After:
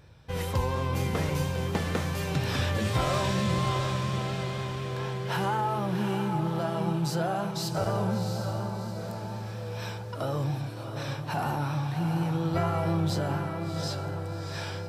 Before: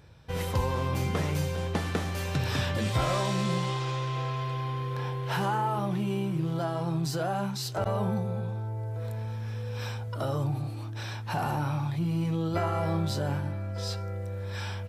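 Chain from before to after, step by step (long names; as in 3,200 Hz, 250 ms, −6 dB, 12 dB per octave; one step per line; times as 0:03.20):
feedback delay with all-pass diffusion 708 ms, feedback 48%, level −6 dB
pitch vibrato 4.2 Hz 28 cents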